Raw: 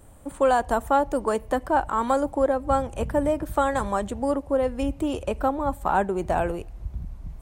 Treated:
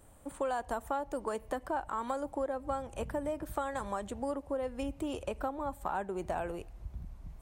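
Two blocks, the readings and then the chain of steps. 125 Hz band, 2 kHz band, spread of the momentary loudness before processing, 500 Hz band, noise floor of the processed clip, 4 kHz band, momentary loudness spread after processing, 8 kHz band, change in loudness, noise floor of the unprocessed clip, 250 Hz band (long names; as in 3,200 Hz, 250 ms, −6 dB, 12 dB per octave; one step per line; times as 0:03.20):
−12.5 dB, −11.5 dB, 7 LU, −12.0 dB, −53 dBFS, −9.5 dB, 6 LU, −9.5 dB, −12.0 dB, −44 dBFS, −12.0 dB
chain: low-shelf EQ 350 Hz −4.5 dB
downward compressor 3 to 1, threshold −27 dBFS, peak gain reduction 8.5 dB
level −5.5 dB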